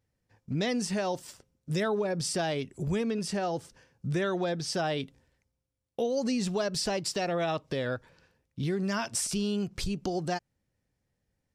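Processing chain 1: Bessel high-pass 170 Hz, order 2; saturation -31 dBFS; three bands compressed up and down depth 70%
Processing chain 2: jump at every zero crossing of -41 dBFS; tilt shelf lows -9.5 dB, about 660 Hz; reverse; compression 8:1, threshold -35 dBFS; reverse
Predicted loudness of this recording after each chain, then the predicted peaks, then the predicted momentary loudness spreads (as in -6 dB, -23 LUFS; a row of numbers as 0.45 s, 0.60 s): -36.0 LUFS, -38.0 LUFS; -20.5 dBFS, -21.0 dBFS; 9 LU, 7 LU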